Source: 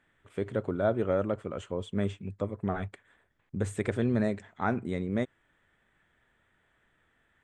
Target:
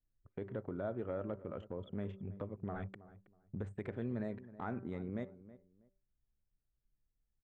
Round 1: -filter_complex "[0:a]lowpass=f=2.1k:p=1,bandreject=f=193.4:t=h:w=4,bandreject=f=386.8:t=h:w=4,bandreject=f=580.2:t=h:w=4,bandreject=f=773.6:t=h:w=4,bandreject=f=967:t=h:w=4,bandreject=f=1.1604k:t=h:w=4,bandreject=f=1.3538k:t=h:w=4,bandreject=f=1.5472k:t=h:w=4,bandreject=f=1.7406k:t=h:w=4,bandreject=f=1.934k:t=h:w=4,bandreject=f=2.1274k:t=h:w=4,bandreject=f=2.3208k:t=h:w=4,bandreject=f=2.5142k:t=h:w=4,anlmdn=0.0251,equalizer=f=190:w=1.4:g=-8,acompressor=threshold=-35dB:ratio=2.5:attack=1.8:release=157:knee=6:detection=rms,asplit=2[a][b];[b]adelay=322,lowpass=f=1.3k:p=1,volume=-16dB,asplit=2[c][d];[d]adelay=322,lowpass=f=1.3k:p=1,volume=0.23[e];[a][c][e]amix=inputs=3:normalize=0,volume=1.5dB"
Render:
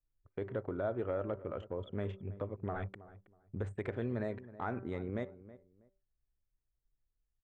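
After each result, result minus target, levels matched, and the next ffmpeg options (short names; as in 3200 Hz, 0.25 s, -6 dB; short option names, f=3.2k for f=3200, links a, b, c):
compressor: peak gain reduction -5 dB; 250 Hz band -2.5 dB
-filter_complex "[0:a]lowpass=f=2.1k:p=1,bandreject=f=193.4:t=h:w=4,bandreject=f=386.8:t=h:w=4,bandreject=f=580.2:t=h:w=4,bandreject=f=773.6:t=h:w=4,bandreject=f=967:t=h:w=4,bandreject=f=1.1604k:t=h:w=4,bandreject=f=1.3538k:t=h:w=4,bandreject=f=1.5472k:t=h:w=4,bandreject=f=1.7406k:t=h:w=4,bandreject=f=1.934k:t=h:w=4,bandreject=f=2.1274k:t=h:w=4,bandreject=f=2.3208k:t=h:w=4,bandreject=f=2.5142k:t=h:w=4,anlmdn=0.0251,equalizer=f=190:w=1.4:g=-8,acompressor=threshold=-42dB:ratio=2.5:attack=1.8:release=157:knee=6:detection=rms,asplit=2[a][b];[b]adelay=322,lowpass=f=1.3k:p=1,volume=-16dB,asplit=2[c][d];[d]adelay=322,lowpass=f=1.3k:p=1,volume=0.23[e];[a][c][e]amix=inputs=3:normalize=0,volume=1.5dB"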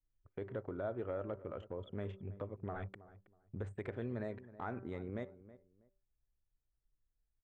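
250 Hz band -2.5 dB
-filter_complex "[0:a]lowpass=f=2.1k:p=1,bandreject=f=193.4:t=h:w=4,bandreject=f=386.8:t=h:w=4,bandreject=f=580.2:t=h:w=4,bandreject=f=773.6:t=h:w=4,bandreject=f=967:t=h:w=4,bandreject=f=1.1604k:t=h:w=4,bandreject=f=1.3538k:t=h:w=4,bandreject=f=1.5472k:t=h:w=4,bandreject=f=1.7406k:t=h:w=4,bandreject=f=1.934k:t=h:w=4,bandreject=f=2.1274k:t=h:w=4,bandreject=f=2.3208k:t=h:w=4,bandreject=f=2.5142k:t=h:w=4,anlmdn=0.0251,acompressor=threshold=-42dB:ratio=2.5:attack=1.8:release=157:knee=6:detection=rms,asplit=2[a][b];[b]adelay=322,lowpass=f=1.3k:p=1,volume=-16dB,asplit=2[c][d];[d]adelay=322,lowpass=f=1.3k:p=1,volume=0.23[e];[a][c][e]amix=inputs=3:normalize=0,volume=1.5dB"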